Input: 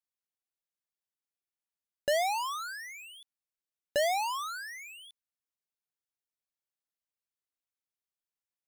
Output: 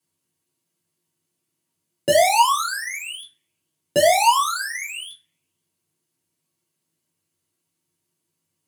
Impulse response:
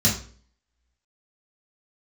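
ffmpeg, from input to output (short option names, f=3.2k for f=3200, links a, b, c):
-filter_complex "[0:a]asoftclip=type=hard:threshold=-30.5dB[a];[1:a]atrim=start_sample=2205,asetrate=70560,aresample=44100[b];[a][b]afir=irnorm=-1:irlink=0,volume=5dB"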